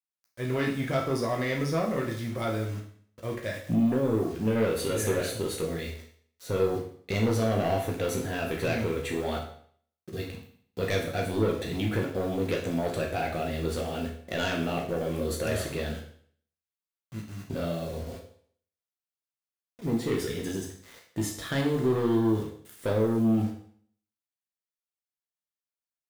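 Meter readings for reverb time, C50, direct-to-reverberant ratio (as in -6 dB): 0.55 s, 6.0 dB, -1.0 dB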